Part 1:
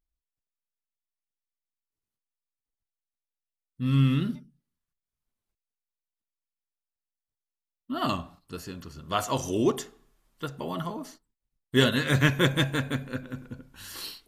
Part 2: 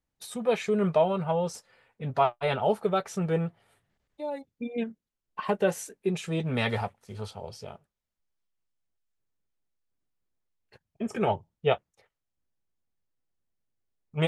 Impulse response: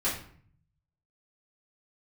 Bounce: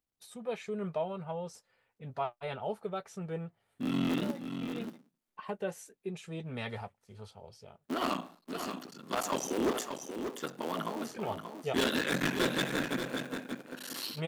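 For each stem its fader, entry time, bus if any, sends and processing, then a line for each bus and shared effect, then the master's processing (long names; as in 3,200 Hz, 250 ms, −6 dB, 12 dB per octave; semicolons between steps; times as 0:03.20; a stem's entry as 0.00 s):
+1.0 dB, 0.00 s, no send, echo send −7.5 dB, sub-harmonics by changed cycles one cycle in 3, muted; high-pass filter 200 Hz 24 dB per octave; soft clipping −25 dBFS, distortion −7 dB
−11.0 dB, 0.00 s, no send, no echo send, no processing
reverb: not used
echo: single-tap delay 583 ms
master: no processing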